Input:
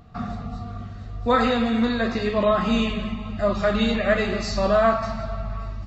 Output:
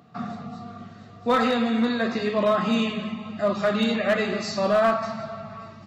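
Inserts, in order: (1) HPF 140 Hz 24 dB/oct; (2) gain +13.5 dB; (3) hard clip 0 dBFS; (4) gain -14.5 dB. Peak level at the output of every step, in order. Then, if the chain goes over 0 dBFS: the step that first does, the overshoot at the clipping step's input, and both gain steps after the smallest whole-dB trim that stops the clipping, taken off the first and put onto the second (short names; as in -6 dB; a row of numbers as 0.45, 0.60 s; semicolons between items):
-7.5, +6.0, 0.0, -14.5 dBFS; step 2, 6.0 dB; step 2 +7.5 dB, step 4 -8.5 dB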